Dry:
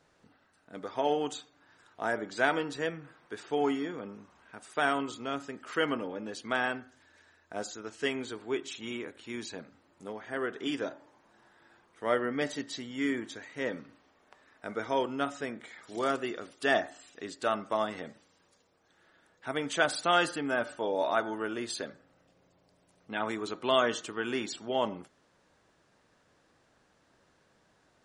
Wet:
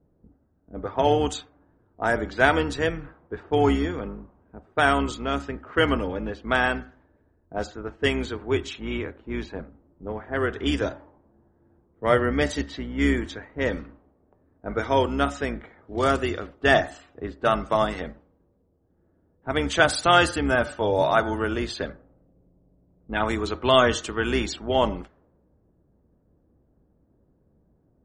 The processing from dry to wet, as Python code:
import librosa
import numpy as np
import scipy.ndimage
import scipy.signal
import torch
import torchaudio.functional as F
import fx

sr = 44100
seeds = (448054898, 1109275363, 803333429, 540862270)

y = fx.octave_divider(x, sr, octaves=2, level_db=-2.0)
y = fx.env_lowpass(y, sr, base_hz=310.0, full_db=-28.5)
y = y * librosa.db_to_amplitude(8.0)